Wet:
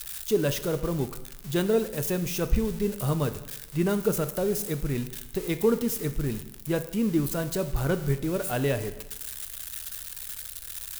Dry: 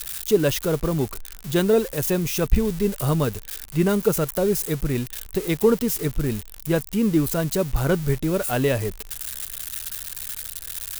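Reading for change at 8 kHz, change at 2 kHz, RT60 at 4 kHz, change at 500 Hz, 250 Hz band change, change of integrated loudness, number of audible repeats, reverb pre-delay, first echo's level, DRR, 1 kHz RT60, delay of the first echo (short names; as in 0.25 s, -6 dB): -5.0 dB, -5.0 dB, 0.95 s, -5.0 dB, -5.0 dB, -5.0 dB, none, 4 ms, none, 10.0 dB, 0.95 s, none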